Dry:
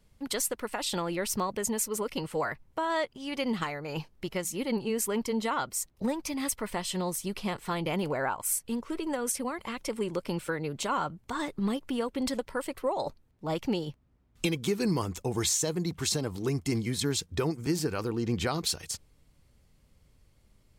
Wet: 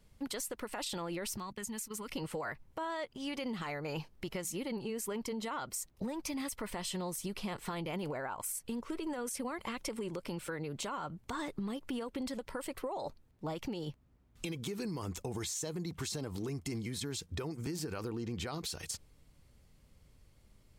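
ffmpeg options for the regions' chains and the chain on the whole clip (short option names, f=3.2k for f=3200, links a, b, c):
-filter_complex "[0:a]asettb=1/sr,asplit=3[a][b][c];[a]atrim=end=1.374[d];[b]atrim=start=1.37:end=2.09,asetpts=PTS-STARTPTS,afade=t=in:d=0.004:c=qsin,afade=t=out:st=0.716:d=0.004:c=qsin,agate=range=-17dB:threshold=-39dB:ratio=16:release=100:detection=peak,equalizer=f=540:t=o:w=1.2:g=-14,acompressor=threshold=-38dB:ratio=4:attack=3.2:release=140:knee=1:detection=peak[e];[c]atrim=start=2.086[f];[d][e]acrossfade=d=0.004:c1=hsin:c2=qsin[g];[g][f]acrossfade=d=0.004:c1=qsin:c2=hsin,alimiter=level_in=2dB:limit=-24dB:level=0:latency=1:release=56,volume=-2dB,acompressor=threshold=-35dB:ratio=6"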